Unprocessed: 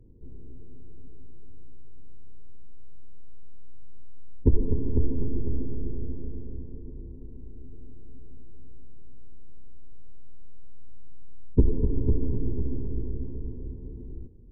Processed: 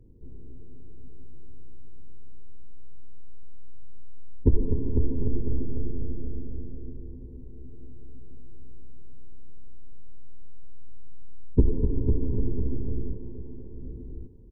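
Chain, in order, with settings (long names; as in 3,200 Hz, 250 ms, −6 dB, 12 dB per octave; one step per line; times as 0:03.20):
0:13.13–0:13.81: high-pass filter 400 Hz 6 dB per octave
on a send: single-tap delay 798 ms −11.5 dB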